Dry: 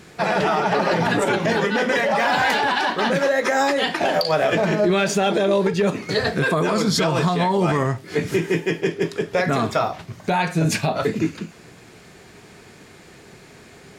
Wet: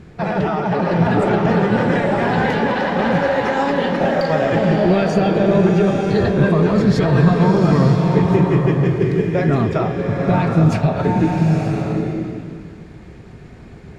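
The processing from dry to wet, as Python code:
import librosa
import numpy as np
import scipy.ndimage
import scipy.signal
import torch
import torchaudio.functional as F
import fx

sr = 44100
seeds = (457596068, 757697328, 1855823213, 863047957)

y = fx.riaa(x, sr, side='playback')
y = fx.rev_bloom(y, sr, seeds[0], attack_ms=940, drr_db=0.5)
y = y * librosa.db_to_amplitude(-2.5)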